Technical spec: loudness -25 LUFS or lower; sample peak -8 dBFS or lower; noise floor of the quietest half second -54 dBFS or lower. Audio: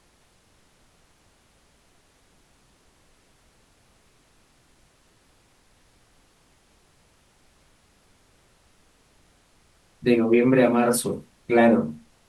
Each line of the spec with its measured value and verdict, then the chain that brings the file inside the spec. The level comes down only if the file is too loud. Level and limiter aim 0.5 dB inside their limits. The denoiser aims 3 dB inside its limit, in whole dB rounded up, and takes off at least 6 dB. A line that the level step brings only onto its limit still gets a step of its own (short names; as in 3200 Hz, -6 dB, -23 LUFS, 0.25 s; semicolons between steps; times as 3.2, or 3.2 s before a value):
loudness -21.0 LUFS: fail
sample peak -5.5 dBFS: fail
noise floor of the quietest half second -61 dBFS: OK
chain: gain -4.5 dB